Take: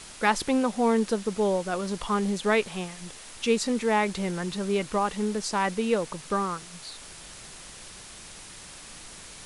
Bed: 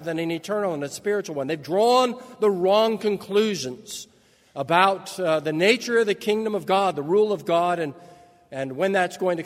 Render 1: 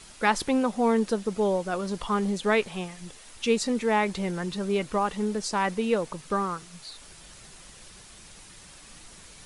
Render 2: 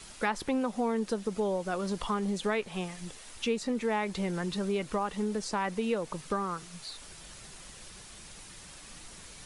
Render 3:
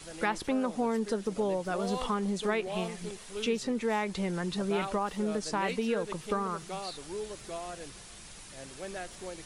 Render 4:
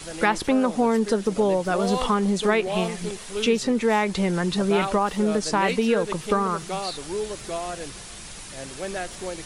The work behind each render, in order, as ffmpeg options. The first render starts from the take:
-af "afftdn=nr=6:nf=-45"
-filter_complex "[0:a]acrossover=split=440|2800[a][b][c];[c]alimiter=level_in=3dB:limit=-24dB:level=0:latency=1:release=307,volume=-3dB[d];[a][b][d]amix=inputs=3:normalize=0,acompressor=threshold=-29dB:ratio=2.5"
-filter_complex "[1:a]volume=-19dB[a];[0:a][a]amix=inputs=2:normalize=0"
-af "volume=9dB"

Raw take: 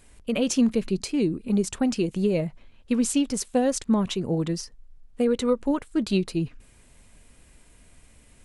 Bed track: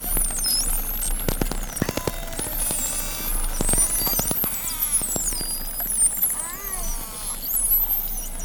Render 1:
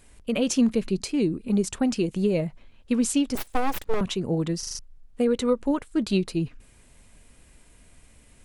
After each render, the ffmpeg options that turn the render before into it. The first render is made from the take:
-filter_complex "[0:a]asettb=1/sr,asplit=3[a][b][c];[a]atrim=end=3.354[d];[b]atrim=start=3.35:end=4.01,asetpts=PTS-STARTPTS,afade=t=in:d=0.004:c=qsin,afade=t=out:st=0.656:d=0.004:c=qsin,aeval=exprs='abs(val(0))':c=same[e];[c]atrim=start=4.006[f];[d][e]acrossfade=d=0.004:c1=hsin:c2=qsin[g];[g][f]acrossfade=d=0.004:c1=qsin:c2=hsin,asplit=6[h][i][j][k][l][m];[h]atrim=end=4.632[n];[i]atrim=start=4.588:end=4.632[o];[j]atrim=start=4.588:end=4.632[p];[k]atrim=start=4.588:end=4.632[q];[l]atrim=start=4.588:end=4.632[r];[m]atrim=start=4.788[s];[n][o]acrossfade=d=0.004:c1=hsin:c2=hsin[t];[t][p]acrossfade=d=0.004:c1=hsin:c2=hsin[u];[u][q]acrossfade=d=0.004:c1=hsin:c2=hsin[v];[v][r]acrossfade=d=0.004:c1=hsin:c2=hsin[w];[w][s]acrossfade=d=0.004:c1=hsin:c2=hsin"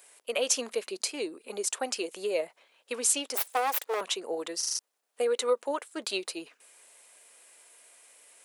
-af "highpass=f=470:w=0.5412,highpass=f=470:w=1.3066,highshelf=f=8.2k:g=9.5"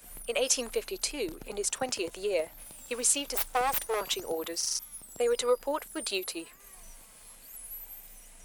-filter_complex "[1:a]volume=-23.5dB[a];[0:a][a]amix=inputs=2:normalize=0"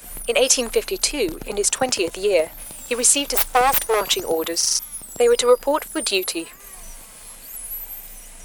-af "volume=11.5dB,alimiter=limit=-2dB:level=0:latency=1"

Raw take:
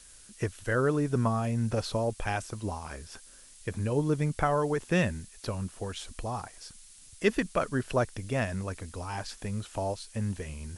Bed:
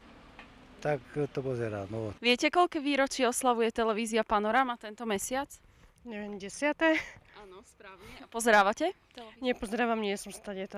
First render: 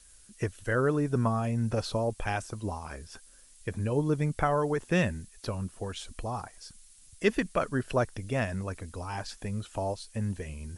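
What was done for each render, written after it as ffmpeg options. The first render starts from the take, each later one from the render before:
-af "afftdn=nr=6:nf=-53"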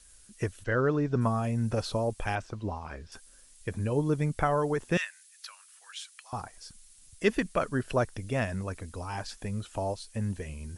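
-filter_complex "[0:a]asplit=3[a][b][c];[a]afade=t=out:st=0.63:d=0.02[d];[b]lowpass=f=5.7k:w=0.5412,lowpass=f=5.7k:w=1.3066,afade=t=in:st=0.63:d=0.02,afade=t=out:st=1.2:d=0.02[e];[c]afade=t=in:st=1.2:d=0.02[f];[d][e][f]amix=inputs=3:normalize=0,asettb=1/sr,asplit=3[g][h][i];[g]atrim=end=2.354[j];[h]atrim=start=2.35:end=3.12,asetpts=PTS-STARTPTS,afade=t=in:d=0.004:c=qsin,afade=t=out:st=0.766:d=0.004:c=qsin,lowpass=4.1k[k];[i]atrim=start=3.116[l];[j][k]acrossfade=d=0.004:c1=hsin:c2=qsin[m];[m][l]acrossfade=d=0.004:c1=qsin:c2=hsin,asettb=1/sr,asplit=3[n][o][p];[n]atrim=end=4.974[q];[o]atrim=start=4.97:end=6.33,asetpts=PTS-STARTPTS,afade=t=in:d=0.004:c=qsin,afade=t=out:st=1.356:d=0.004:c=qsin,highpass=f=1.4k:w=0.5412,highpass=f=1.4k:w=1.3066[r];[p]atrim=start=6.326[s];[q][r]acrossfade=d=0.004:c1=hsin:c2=qsin[t];[t][s]acrossfade=d=0.004:c1=qsin:c2=hsin"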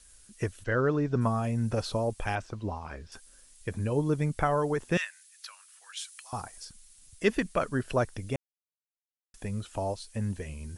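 -filter_complex "[0:a]asettb=1/sr,asplit=3[a][b][c];[a]atrim=end=5.974[d];[b]atrim=start=5.97:end=6.65,asetpts=PTS-STARTPTS,afade=t=in:d=0.004:c=qsin,afade=t=out:st=0.676:d=0.004:c=qsin,highshelf=f=6.3k:g=8.5[e];[c]atrim=start=6.646[f];[d][e]acrossfade=d=0.004:c1=hsin:c2=qsin[g];[g][f]acrossfade=d=0.004:c1=qsin:c2=hsin,asplit=3[h][i][j];[h]atrim=end=8.36,asetpts=PTS-STARTPTS,afade=t=out:st=8.356:d=0.004:c=hsin[k];[i]atrim=start=8.36:end=9.34,asetpts=PTS-STARTPTS,volume=0[l];[j]atrim=start=9.34,asetpts=PTS-STARTPTS,afade=t=in:d=0.004:c=hsin[m];[k][l][m]concat=n=3:v=0:a=1"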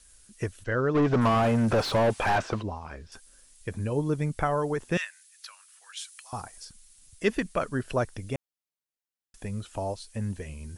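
-filter_complex "[0:a]asplit=3[a][b][c];[a]afade=t=out:st=0.94:d=0.02[d];[b]asplit=2[e][f];[f]highpass=f=720:p=1,volume=29dB,asoftclip=type=tanh:threshold=-14.5dB[g];[e][g]amix=inputs=2:normalize=0,lowpass=f=1.4k:p=1,volume=-6dB,afade=t=in:st=0.94:d=0.02,afade=t=out:st=2.61:d=0.02[h];[c]afade=t=in:st=2.61:d=0.02[i];[d][h][i]amix=inputs=3:normalize=0"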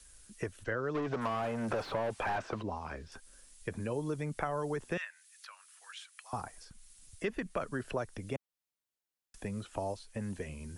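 -filter_complex "[0:a]acrossover=split=330[a][b];[a]alimiter=level_in=5dB:limit=-24dB:level=0:latency=1,volume=-5dB[c];[c][b]amix=inputs=2:normalize=0,acrossover=split=140|2600[d][e][f];[d]acompressor=threshold=-48dB:ratio=4[g];[e]acompressor=threshold=-33dB:ratio=4[h];[f]acompressor=threshold=-56dB:ratio=4[i];[g][h][i]amix=inputs=3:normalize=0"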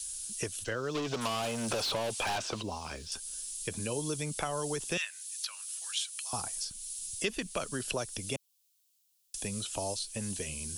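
-af "aexciter=amount=6.9:drive=4.3:freq=2.7k"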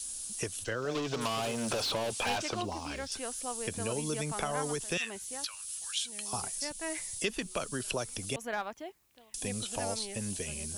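-filter_complex "[1:a]volume=-13dB[a];[0:a][a]amix=inputs=2:normalize=0"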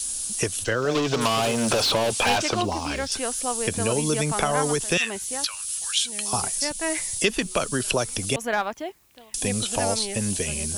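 -af "volume=10.5dB"

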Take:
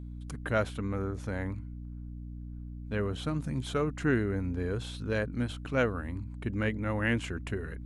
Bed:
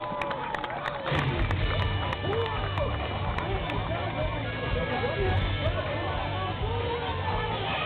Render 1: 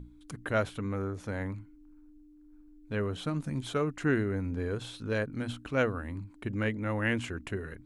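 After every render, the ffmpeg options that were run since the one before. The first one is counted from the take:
-af "bandreject=f=60:t=h:w=6,bandreject=f=120:t=h:w=6,bandreject=f=180:t=h:w=6,bandreject=f=240:t=h:w=6"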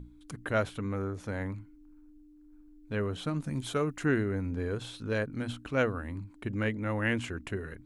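-filter_complex "[0:a]asettb=1/sr,asplit=3[a][b][c];[a]atrim=end=3.504[d];[b]atrim=start=3.5:end=4.06,asetpts=PTS-STARTPTS,afade=t=in:d=0.004:c=qsin,afade=t=out:st=0.556:d=0.004:c=qsin,highshelf=f=9.7k:g=10[e];[c]atrim=start=4.056[f];[d][e]acrossfade=d=0.004:c1=hsin:c2=qsin[g];[g][f]acrossfade=d=0.004:c1=qsin:c2=hsin"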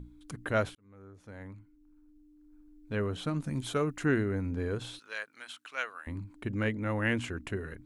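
-filter_complex "[0:a]asettb=1/sr,asplit=3[a][b][c];[a]atrim=end=4.994[d];[b]atrim=start=4.99:end=6.07,asetpts=PTS-STARTPTS,afade=t=in:d=0.004:c=qsin,afade=t=out:st=1.076:d=0.004:c=qsin,highpass=1.3k[e];[c]atrim=start=6.066[f];[d][e]acrossfade=d=0.004:c1=hsin:c2=qsin[g];[g][f]acrossfade=d=0.004:c1=qsin:c2=hsin,asplit=2[h][i];[h]atrim=end=0.75,asetpts=PTS-STARTPTS,afade=t=out:st=0.746:d=0.004:c=hsin[j];[i]atrim=start=0.75,asetpts=PTS-STARTPTS,afade=t=in:d=2.25[k];[j][k]concat=n=2:v=0:a=1"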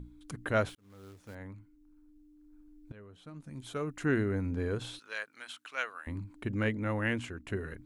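-filter_complex "[0:a]asettb=1/sr,asplit=3[a][b][c];[a]atrim=end=0.694[d];[b]atrim=start=0.69:end=1.35,asetpts=PTS-STARTPTS,afade=t=in:d=0.004:c=qsin,afade=t=out:st=0.656:d=0.004:c=qsin,acrusher=bits=3:mode=log:mix=0:aa=0.000001[e];[c]atrim=start=1.346[f];[d][e]acrossfade=d=0.004:c1=hsin:c2=qsin[g];[g][f]acrossfade=d=0.004:c1=qsin:c2=hsin,asplit=3[h][i][j];[h]atrim=end=2.92,asetpts=PTS-STARTPTS,afade=t=out:st=2.916:d=0.004:c=hsin:silence=0.0891251[k];[i]atrim=start=2.92:end=7.48,asetpts=PTS-STARTPTS,afade=t=in:d=1.31:c=qua:silence=0.0891251,afade=t=out:st=3.9:d=0.66:silence=0.446684[l];[j]atrim=start=7.48,asetpts=PTS-STARTPTS,afade=t=in:d=0.004:c=hsin:silence=0.446684[m];[k][l][m]concat=n=3:v=0:a=1"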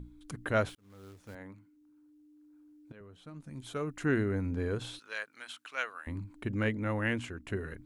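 -filter_complex "[0:a]asettb=1/sr,asplit=3[a][b][c];[a]atrim=end=1.354[d];[b]atrim=start=1.35:end=3.01,asetpts=PTS-STARTPTS,afade=t=in:d=0.004:c=qsin,afade=t=out:st=1.656:d=0.004:c=qsin,highpass=150[e];[c]atrim=start=3.006[f];[d][e]acrossfade=d=0.004:c1=hsin:c2=qsin[g];[g][f]acrossfade=d=0.004:c1=qsin:c2=hsin"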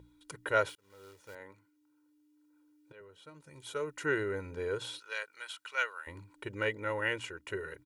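-af "highpass=f=480:p=1,aecho=1:1:2.1:0.79"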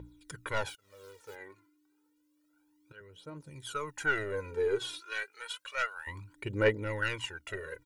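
-af "aeval=exprs='(tanh(11.2*val(0)+0.2)-tanh(0.2))/11.2':c=same,aphaser=in_gain=1:out_gain=1:delay=3:decay=0.7:speed=0.3:type=triangular"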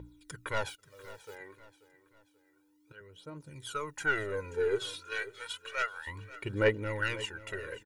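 -af "aecho=1:1:534|1068|1602:0.141|0.0579|0.0237"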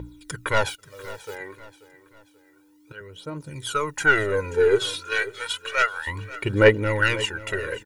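-af "volume=11.5dB"

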